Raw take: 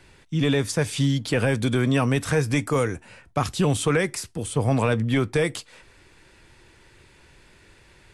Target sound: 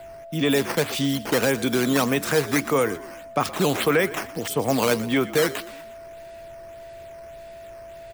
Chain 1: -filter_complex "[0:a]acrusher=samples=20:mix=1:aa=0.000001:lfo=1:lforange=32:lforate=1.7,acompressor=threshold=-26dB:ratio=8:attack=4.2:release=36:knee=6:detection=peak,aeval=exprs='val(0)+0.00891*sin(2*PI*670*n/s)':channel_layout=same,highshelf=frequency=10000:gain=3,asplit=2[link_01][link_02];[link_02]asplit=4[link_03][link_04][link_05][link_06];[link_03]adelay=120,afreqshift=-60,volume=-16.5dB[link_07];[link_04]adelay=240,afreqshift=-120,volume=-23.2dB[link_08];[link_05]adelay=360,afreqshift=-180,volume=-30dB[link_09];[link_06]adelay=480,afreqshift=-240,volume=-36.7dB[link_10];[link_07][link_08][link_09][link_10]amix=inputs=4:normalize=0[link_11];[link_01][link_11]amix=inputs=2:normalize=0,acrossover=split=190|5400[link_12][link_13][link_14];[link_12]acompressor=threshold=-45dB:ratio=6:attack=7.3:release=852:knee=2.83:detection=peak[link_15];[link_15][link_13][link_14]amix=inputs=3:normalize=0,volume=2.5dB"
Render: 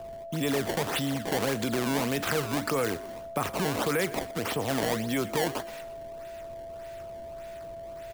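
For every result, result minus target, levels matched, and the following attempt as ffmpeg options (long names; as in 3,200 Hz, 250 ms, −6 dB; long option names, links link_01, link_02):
downward compressor: peak gain reduction +9.5 dB; sample-and-hold swept by an LFO: distortion +6 dB
-filter_complex "[0:a]acrusher=samples=20:mix=1:aa=0.000001:lfo=1:lforange=32:lforate=1.7,aeval=exprs='val(0)+0.00891*sin(2*PI*670*n/s)':channel_layout=same,highshelf=frequency=10000:gain=3,asplit=2[link_01][link_02];[link_02]asplit=4[link_03][link_04][link_05][link_06];[link_03]adelay=120,afreqshift=-60,volume=-16.5dB[link_07];[link_04]adelay=240,afreqshift=-120,volume=-23.2dB[link_08];[link_05]adelay=360,afreqshift=-180,volume=-30dB[link_09];[link_06]adelay=480,afreqshift=-240,volume=-36.7dB[link_10];[link_07][link_08][link_09][link_10]amix=inputs=4:normalize=0[link_11];[link_01][link_11]amix=inputs=2:normalize=0,acrossover=split=190|5400[link_12][link_13][link_14];[link_12]acompressor=threshold=-45dB:ratio=6:attack=7.3:release=852:knee=2.83:detection=peak[link_15];[link_15][link_13][link_14]amix=inputs=3:normalize=0,volume=2.5dB"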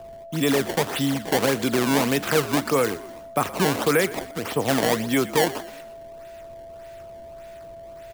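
sample-and-hold swept by an LFO: distortion +6 dB
-filter_complex "[0:a]acrusher=samples=7:mix=1:aa=0.000001:lfo=1:lforange=11.2:lforate=1.7,aeval=exprs='val(0)+0.00891*sin(2*PI*670*n/s)':channel_layout=same,highshelf=frequency=10000:gain=3,asplit=2[link_01][link_02];[link_02]asplit=4[link_03][link_04][link_05][link_06];[link_03]adelay=120,afreqshift=-60,volume=-16.5dB[link_07];[link_04]adelay=240,afreqshift=-120,volume=-23.2dB[link_08];[link_05]adelay=360,afreqshift=-180,volume=-30dB[link_09];[link_06]adelay=480,afreqshift=-240,volume=-36.7dB[link_10];[link_07][link_08][link_09][link_10]amix=inputs=4:normalize=0[link_11];[link_01][link_11]amix=inputs=2:normalize=0,acrossover=split=190|5400[link_12][link_13][link_14];[link_12]acompressor=threshold=-45dB:ratio=6:attack=7.3:release=852:knee=2.83:detection=peak[link_15];[link_15][link_13][link_14]amix=inputs=3:normalize=0,volume=2.5dB"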